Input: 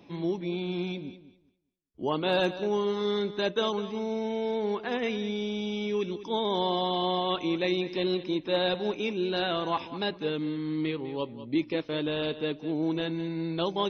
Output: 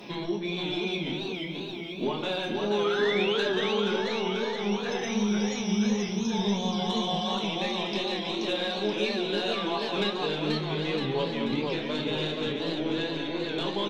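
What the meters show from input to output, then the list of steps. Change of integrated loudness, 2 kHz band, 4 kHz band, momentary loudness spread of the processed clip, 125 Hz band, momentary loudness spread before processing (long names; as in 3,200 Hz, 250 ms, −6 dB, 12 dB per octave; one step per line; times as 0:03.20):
+1.5 dB, +4.0 dB, +4.0 dB, 5 LU, +2.5 dB, 5 LU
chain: gain on a spectral selection 0:04.53–0:06.90, 210–5,100 Hz −16 dB
spectral tilt +2 dB per octave
mains-hum notches 60/120/180 Hz
downward compressor 16 to 1, threshold −40 dBFS, peak gain reduction 18.5 dB
flanger 0.2 Hz, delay 5.4 ms, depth 8.3 ms, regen −63%
sine wavefolder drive 3 dB, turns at −32 dBFS
sound drawn into the spectrogram rise, 0:02.84–0:03.39, 1,200–3,500 Hz −44 dBFS
single-tap delay 144 ms −12.5 dB
rectangular room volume 170 cubic metres, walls furnished, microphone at 1.3 metres
feedback echo with a swinging delay time 482 ms, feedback 68%, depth 177 cents, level −4 dB
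level +8 dB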